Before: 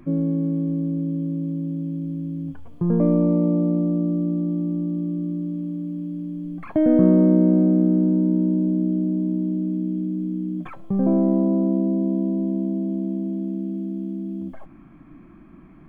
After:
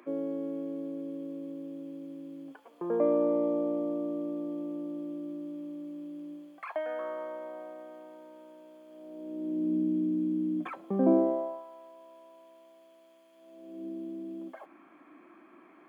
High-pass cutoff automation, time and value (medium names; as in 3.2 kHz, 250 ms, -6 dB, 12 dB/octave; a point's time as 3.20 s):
high-pass 24 dB/octave
6.33 s 390 Hz
6.84 s 820 Hz
8.86 s 820 Hz
9.76 s 260 Hz
11.09 s 260 Hz
11.65 s 1 kHz
13.32 s 1 kHz
13.86 s 370 Hz